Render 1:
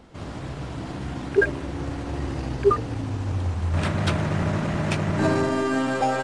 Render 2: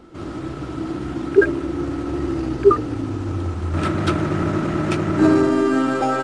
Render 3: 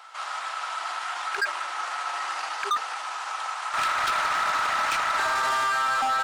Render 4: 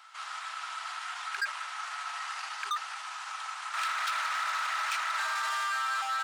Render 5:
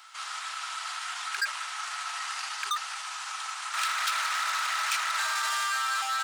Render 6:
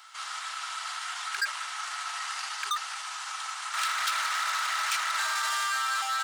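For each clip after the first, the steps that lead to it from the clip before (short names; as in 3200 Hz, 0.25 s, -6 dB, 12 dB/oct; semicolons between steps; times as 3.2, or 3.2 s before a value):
small resonant body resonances 330/1300 Hz, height 14 dB, ringing for 45 ms
steep high-pass 810 Hz 36 dB/oct; in parallel at +1.5 dB: negative-ratio compressor -30 dBFS, ratio -0.5; on the sum: hard clip -21 dBFS, distortion -12 dB
HPF 1200 Hz 12 dB/oct; gain -4.5 dB
high shelf 3200 Hz +10 dB
notch 2500 Hz, Q 24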